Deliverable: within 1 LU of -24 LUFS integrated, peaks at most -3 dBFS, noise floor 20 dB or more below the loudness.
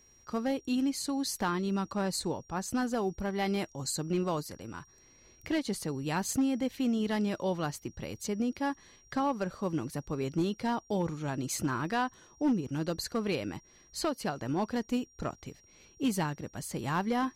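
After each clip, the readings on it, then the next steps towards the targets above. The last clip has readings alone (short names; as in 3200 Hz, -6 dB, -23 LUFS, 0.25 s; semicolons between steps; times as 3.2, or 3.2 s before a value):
clipped 0.7%; flat tops at -22.5 dBFS; steady tone 5700 Hz; tone level -60 dBFS; loudness -33.0 LUFS; peak -22.5 dBFS; loudness target -24.0 LUFS
-> clip repair -22.5 dBFS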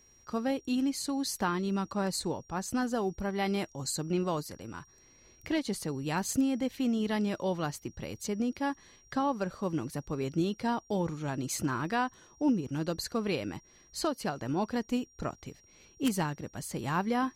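clipped 0.0%; steady tone 5700 Hz; tone level -60 dBFS
-> notch 5700 Hz, Q 30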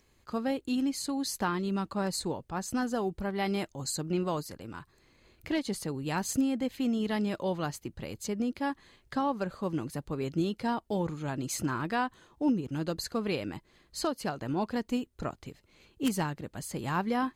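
steady tone none; loudness -32.5 LUFS; peak -13.5 dBFS; loudness target -24.0 LUFS
-> gain +8.5 dB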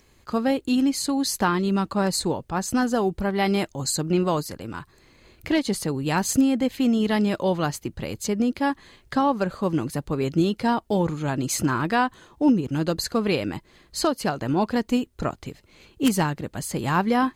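loudness -24.0 LUFS; peak -5.0 dBFS; noise floor -58 dBFS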